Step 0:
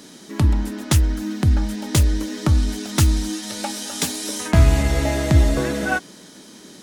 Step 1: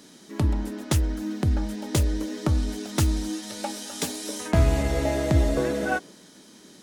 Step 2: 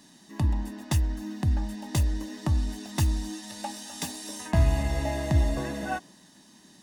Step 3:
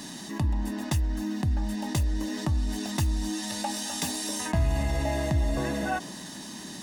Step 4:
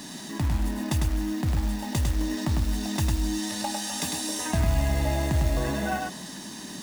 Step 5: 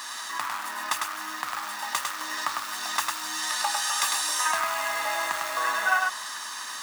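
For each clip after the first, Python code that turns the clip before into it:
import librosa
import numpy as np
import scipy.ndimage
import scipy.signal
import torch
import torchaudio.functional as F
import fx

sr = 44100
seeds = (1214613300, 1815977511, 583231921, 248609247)

y1 = fx.dynamic_eq(x, sr, hz=490.0, q=0.93, threshold_db=-37.0, ratio=4.0, max_db=7)
y1 = y1 * librosa.db_to_amplitude(-7.0)
y2 = y1 + 0.65 * np.pad(y1, (int(1.1 * sr / 1000.0), 0))[:len(y1)]
y2 = y2 * librosa.db_to_amplitude(-5.5)
y3 = fx.env_flatten(y2, sr, amount_pct=50)
y3 = y3 * librosa.db_to_amplitude(-4.5)
y4 = fx.quant_float(y3, sr, bits=2)
y4 = y4 + 10.0 ** (-4.0 / 20.0) * np.pad(y4, (int(102 * sr / 1000.0), 0))[:len(y4)]
y5 = fx.highpass_res(y4, sr, hz=1200.0, q=5.0)
y5 = y5 * librosa.db_to_amplitude(4.0)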